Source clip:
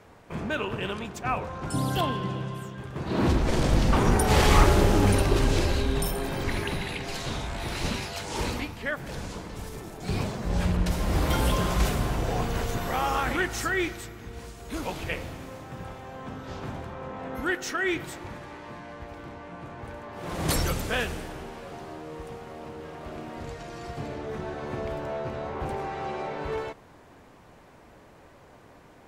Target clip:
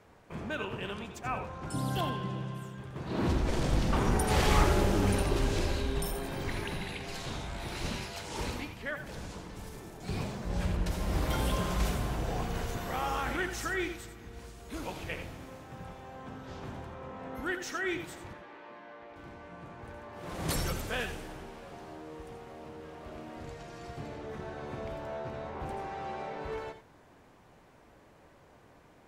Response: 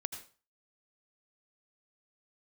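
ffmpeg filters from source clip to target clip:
-filter_complex "[0:a]asettb=1/sr,asplit=3[s0][s1][s2];[s0]atrim=end=18.334[s3];[s1]atrim=start=18.33:end=19.16,asetpts=PTS-STARTPTS,afade=t=in:d=0.004:c=qsin,afade=t=out:st=0.826:d=0.004:c=qsin,acrossover=split=240 4200:gain=0.0891 1 0.141[s4][s5][s6];[s4][s5][s6]amix=inputs=3:normalize=0[s7];[s2]atrim=start=19.156[s8];[s3][s7]acrossfade=d=0.004:c1=hsin:c2=qsin[s9];[s9][s8]acrossfade=d=0.004:c1=qsin:c2=hsin[s10];[1:a]atrim=start_sample=2205,afade=t=out:st=0.14:d=0.01,atrim=end_sample=6615[s11];[s10][s11]afir=irnorm=-1:irlink=0,volume=0.531"

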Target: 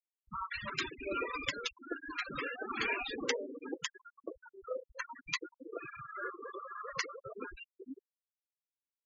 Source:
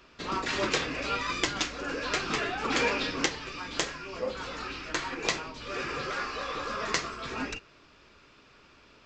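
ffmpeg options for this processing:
-filter_complex "[0:a]acrossover=split=230|780[s0][s1][s2];[s2]adelay=50[s3];[s1]adelay=480[s4];[s0][s4][s3]amix=inputs=3:normalize=0,afftfilt=real='re*gte(hypot(re,im),0.0631)':imag='im*gte(hypot(re,im),0.0631)':win_size=1024:overlap=0.75,volume=0.631"

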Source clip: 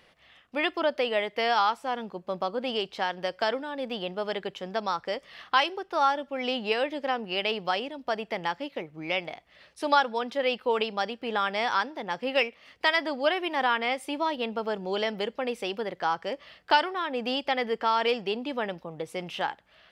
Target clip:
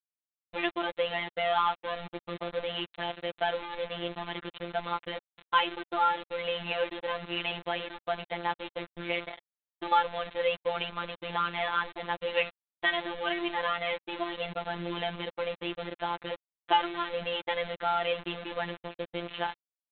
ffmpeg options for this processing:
-af "aresample=8000,acrusher=bits=5:mix=0:aa=0.000001,aresample=44100,afftfilt=real='hypot(re,im)*cos(PI*b)':imag='0':win_size=1024:overlap=0.75"

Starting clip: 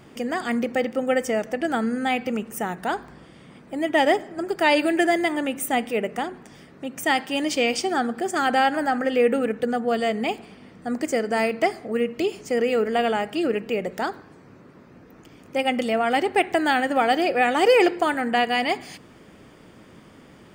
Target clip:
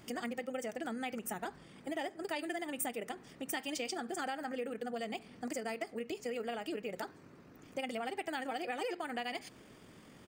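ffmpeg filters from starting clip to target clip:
-af "atempo=2,acompressor=threshold=0.0355:ratio=5,highshelf=f=3500:g=7,volume=0.398"

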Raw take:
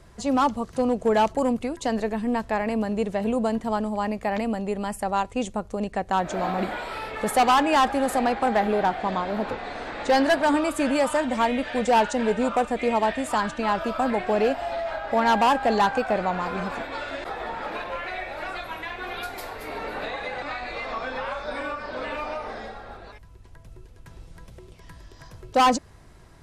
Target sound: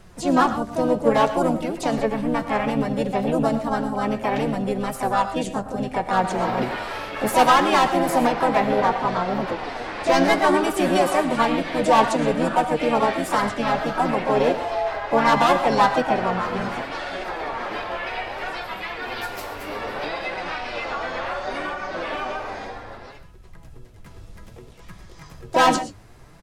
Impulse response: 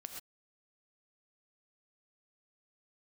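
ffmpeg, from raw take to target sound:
-filter_complex "[0:a]asplit=3[s0][s1][s2];[s1]asetrate=29433,aresample=44100,atempo=1.49831,volume=0.398[s3];[s2]asetrate=55563,aresample=44100,atempo=0.793701,volume=0.708[s4];[s0][s3][s4]amix=inputs=3:normalize=0,flanger=delay=5.3:depth=5.2:regen=50:speed=0.64:shape=sinusoidal,asplit=2[s5][s6];[1:a]atrim=start_sample=2205[s7];[s6][s7]afir=irnorm=-1:irlink=0,volume=1.26[s8];[s5][s8]amix=inputs=2:normalize=0"

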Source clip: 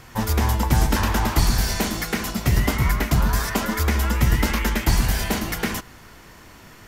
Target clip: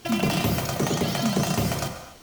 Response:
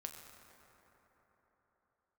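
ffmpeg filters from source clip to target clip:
-filter_complex "[0:a]asetrate=136269,aresample=44100[s0];[1:a]atrim=start_sample=2205,afade=t=out:st=0.34:d=0.01,atrim=end_sample=15435[s1];[s0][s1]afir=irnorm=-1:irlink=0"

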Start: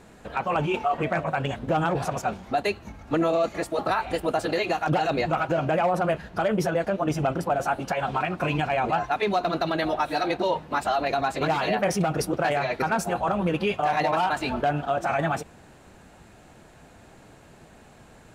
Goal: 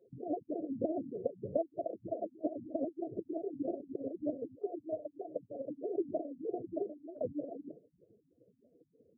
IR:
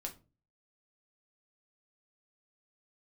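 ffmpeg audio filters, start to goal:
-af "acompressor=threshold=0.0316:ratio=12,asetrate=88200,aresample=44100,afftfilt=real='re*(1-between(b*sr/4096,730,9700))':imag='im*(1-between(b*sr/4096,730,9700))':win_size=4096:overlap=0.75,aeval=exprs='0.0668*(cos(1*acos(clip(val(0)/0.0668,-1,1)))-cos(1*PI/2))+0.00266*(cos(3*acos(clip(val(0)/0.0668,-1,1)))-cos(3*PI/2))+0.00106*(cos(4*acos(clip(val(0)/0.0668,-1,1)))-cos(4*PI/2))':c=same,equalizer=f=480:w=2.9:g=5.5,afftdn=nr=21:nf=-42,highpass=120,agate=range=0.316:threshold=0.00355:ratio=16:detection=peak,afftfilt=real='re*lt(b*sr/1024,260*pow(1800/260,0.5+0.5*sin(2*PI*3.2*pts/sr)))':imag='im*lt(b*sr/1024,260*pow(1800/260,0.5+0.5*sin(2*PI*3.2*pts/sr)))':win_size=1024:overlap=0.75,volume=1.33"

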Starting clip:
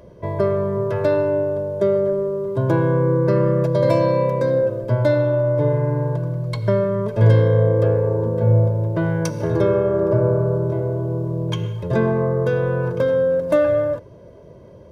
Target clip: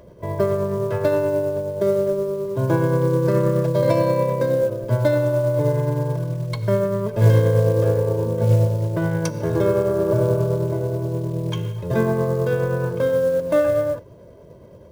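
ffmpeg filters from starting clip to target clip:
-af "tremolo=f=9.5:d=0.29,acrusher=bits=7:mode=log:mix=0:aa=0.000001"

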